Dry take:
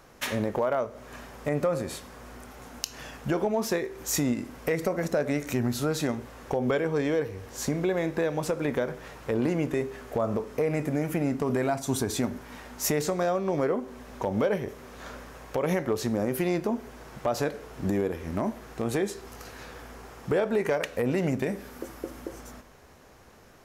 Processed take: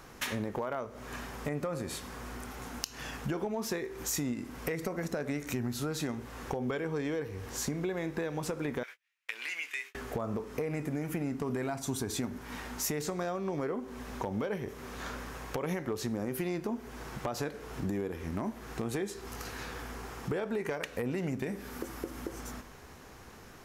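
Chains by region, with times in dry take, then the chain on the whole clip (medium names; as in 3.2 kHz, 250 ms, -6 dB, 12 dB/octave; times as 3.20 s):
8.83–9.95 s: gate -36 dBFS, range -41 dB + resonant high-pass 2.3 kHz, resonance Q 2.5 + doubling 18 ms -11.5 dB
whole clip: peaking EQ 590 Hz -6 dB 0.51 oct; compression 2.5:1, threshold -39 dBFS; trim +3.5 dB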